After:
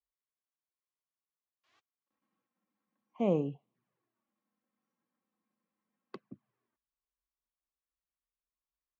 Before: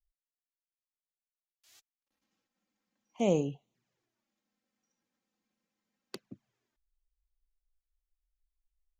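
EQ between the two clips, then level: BPF 140–2200 Hz; low shelf 240 Hz +5.5 dB; bell 1100 Hz +10 dB 0.23 oct; -3.0 dB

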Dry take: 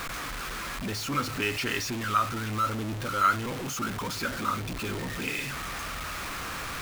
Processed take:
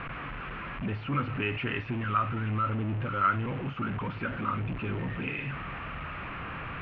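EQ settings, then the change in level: elliptic low-pass 2800 Hz, stop band 80 dB; bell 130 Hz +8.5 dB 1.5 oct; -2.5 dB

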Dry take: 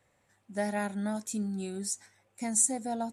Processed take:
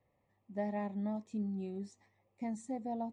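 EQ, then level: Butterworth band-stop 1500 Hz, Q 2.9; tape spacing loss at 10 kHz 36 dB; -3.0 dB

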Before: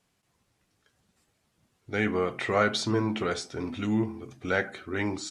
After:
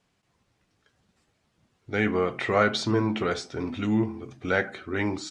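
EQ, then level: air absorption 57 m; +2.5 dB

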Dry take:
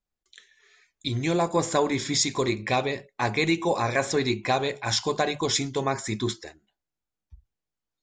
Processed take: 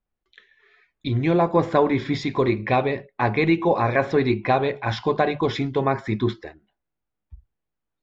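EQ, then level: air absorption 340 m; high shelf 5700 Hz -6.5 dB; +6.0 dB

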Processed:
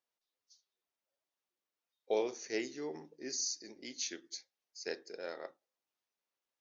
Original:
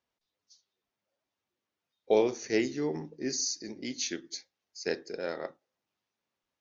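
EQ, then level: tone controls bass -12 dB, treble +3 dB; -7.0 dB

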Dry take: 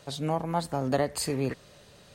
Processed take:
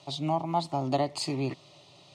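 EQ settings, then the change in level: BPF 120–3300 Hz; high shelf 2100 Hz +10 dB; fixed phaser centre 320 Hz, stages 8; +1.5 dB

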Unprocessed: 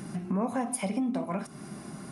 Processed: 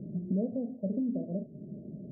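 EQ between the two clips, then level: rippled Chebyshev low-pass 630 Hz, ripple 3 dB; 0.0 dB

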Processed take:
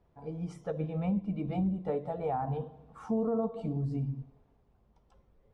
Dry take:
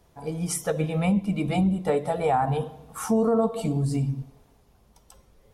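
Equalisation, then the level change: dynamic EQ 1900 Hz, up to -4 dB, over -46 dBFS, Q 0.99; tape spacing loss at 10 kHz 31 dB; -7.0 dB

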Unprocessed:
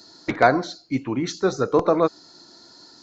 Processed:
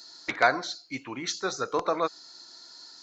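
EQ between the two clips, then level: tilt shelf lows -9 dB, about 660 Hz; -7.5 dB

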